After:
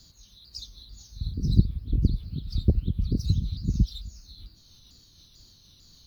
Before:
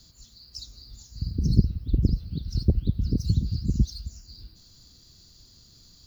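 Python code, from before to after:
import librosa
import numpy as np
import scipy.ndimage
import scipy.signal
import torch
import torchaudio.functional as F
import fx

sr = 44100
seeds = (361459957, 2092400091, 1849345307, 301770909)

y = fx.pitch_ramps(x, sr, semitones=-3.0, every_ms=446)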